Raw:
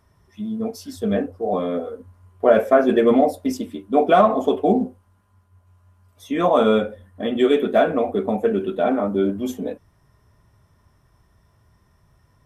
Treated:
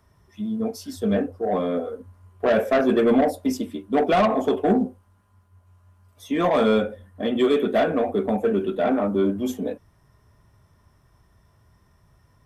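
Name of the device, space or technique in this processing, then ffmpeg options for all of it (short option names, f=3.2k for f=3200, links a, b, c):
one-band saturation: -filter_complex "[0:a]acrossover=split=240|3700[a][b][c];[b]asoftclip=type=tanh:threshold=-15dB[d];[a][d][c]amix=inputs=3:normalize=0"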